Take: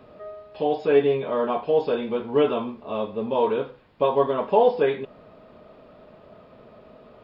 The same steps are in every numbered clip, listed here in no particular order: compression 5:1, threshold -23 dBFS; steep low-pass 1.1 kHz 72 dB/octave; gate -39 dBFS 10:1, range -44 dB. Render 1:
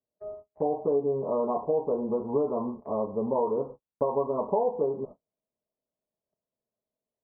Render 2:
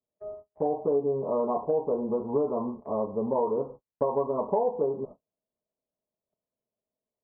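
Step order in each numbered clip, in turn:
compression > steep low-pass > gate; steep low-pass > gate > compression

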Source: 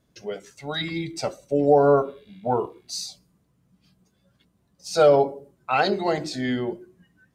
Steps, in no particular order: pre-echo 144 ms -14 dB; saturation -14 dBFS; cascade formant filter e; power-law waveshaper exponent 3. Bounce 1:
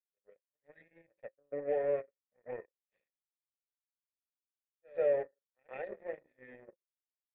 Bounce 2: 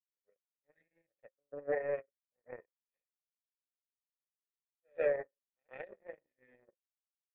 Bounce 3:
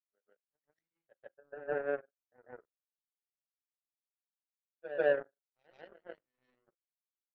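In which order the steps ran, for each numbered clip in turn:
pre-echo > saturation > power-law waveshaper > cascade formant filter; pre-echo > power-law waveshaper > cascade formant filter > saturation; cascade formant filter > saturation > power-law waveshaper > pre-echo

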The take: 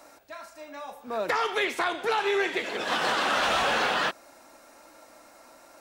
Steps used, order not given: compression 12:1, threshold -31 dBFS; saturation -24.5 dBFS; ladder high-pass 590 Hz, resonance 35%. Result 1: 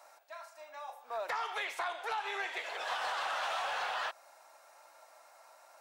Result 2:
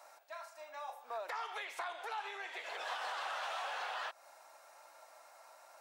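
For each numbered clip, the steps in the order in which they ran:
ladder high-pass > compression > saturation; compression > ladder high-pass > saturation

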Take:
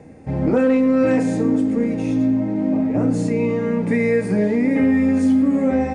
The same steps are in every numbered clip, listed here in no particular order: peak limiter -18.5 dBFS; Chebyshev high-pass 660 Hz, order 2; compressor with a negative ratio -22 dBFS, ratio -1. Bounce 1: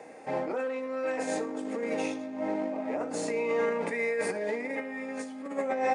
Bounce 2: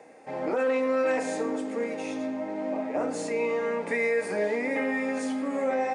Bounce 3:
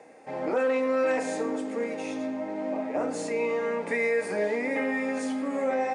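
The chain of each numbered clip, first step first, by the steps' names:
compressor with a negative ratio > Chebyshev high-pass > peak limiter; Chebyshev high-pass > compressor with a negative ratio > peak limiter; Chebyshev high-pass > peak limiter > compressor with a negative ratio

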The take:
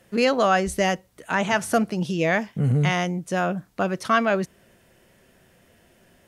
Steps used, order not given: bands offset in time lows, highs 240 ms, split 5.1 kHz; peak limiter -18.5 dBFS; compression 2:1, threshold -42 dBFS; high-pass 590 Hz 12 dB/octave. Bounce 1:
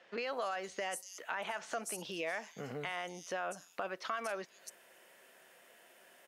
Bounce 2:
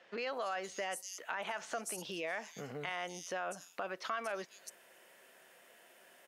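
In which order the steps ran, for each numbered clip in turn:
high-pass > peak limiter > bands offset in time > compression; bands offset in time > peak limiter > high-pass > compression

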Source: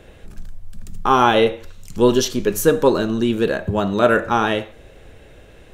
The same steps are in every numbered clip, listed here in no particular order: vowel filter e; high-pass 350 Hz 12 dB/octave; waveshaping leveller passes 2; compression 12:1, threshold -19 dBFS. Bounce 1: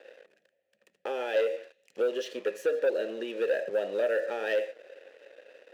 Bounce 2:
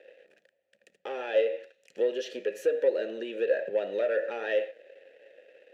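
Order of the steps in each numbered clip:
compression > vowel filter > waveshaping leveller > high-pass; compression > high-pass > waveshaping leveller > vowel filter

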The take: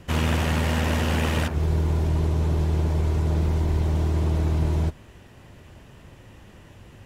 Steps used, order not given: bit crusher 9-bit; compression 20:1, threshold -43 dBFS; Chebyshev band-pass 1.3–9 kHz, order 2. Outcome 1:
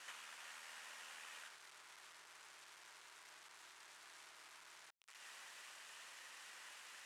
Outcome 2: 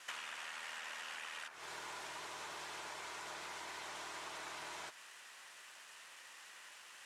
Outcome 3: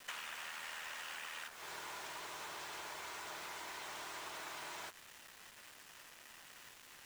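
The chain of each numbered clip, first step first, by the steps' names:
compression > bit crusher > Chebyshev band-pass; bit crusher > Chebyshev band-pass > compression; Chebyshev band-pass > compression > bit crusher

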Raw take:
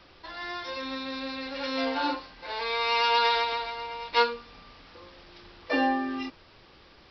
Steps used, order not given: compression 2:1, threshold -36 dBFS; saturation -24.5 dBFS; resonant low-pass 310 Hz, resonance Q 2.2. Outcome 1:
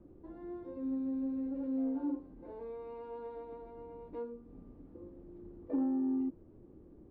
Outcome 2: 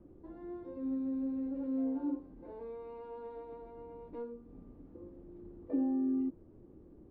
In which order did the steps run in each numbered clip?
compression > resonant low-pass > saturation; compression > saturation > resonant low-pass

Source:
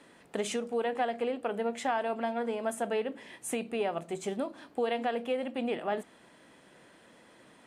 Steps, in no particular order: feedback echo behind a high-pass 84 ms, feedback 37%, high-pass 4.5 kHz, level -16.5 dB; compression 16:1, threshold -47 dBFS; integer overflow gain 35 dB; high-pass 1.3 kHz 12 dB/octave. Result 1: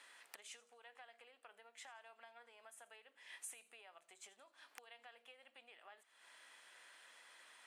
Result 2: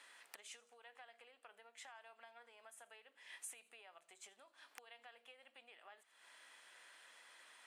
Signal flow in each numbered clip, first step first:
compression > feedback echo behind a high-pass > integer overflow > high-pass; feedback echo behind a high-pass > compression > integer overflow > high-pass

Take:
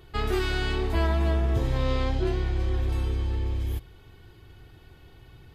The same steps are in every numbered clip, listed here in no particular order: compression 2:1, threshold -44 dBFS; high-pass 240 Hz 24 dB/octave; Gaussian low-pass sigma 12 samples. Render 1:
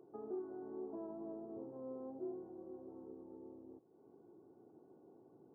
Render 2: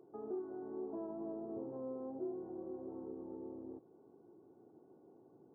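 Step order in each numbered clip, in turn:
compression > high-pass > Gaussian low-pass; high-pass > compression > Gaussian low-pass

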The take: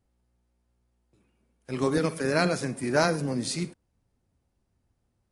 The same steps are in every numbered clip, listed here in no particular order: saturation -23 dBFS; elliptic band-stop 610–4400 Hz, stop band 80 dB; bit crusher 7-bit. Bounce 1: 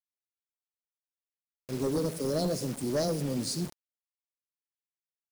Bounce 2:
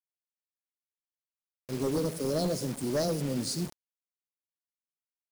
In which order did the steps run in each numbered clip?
elliptic band-stop > bit crusher > saturation; elliptic band-stop > saturation > bit crusher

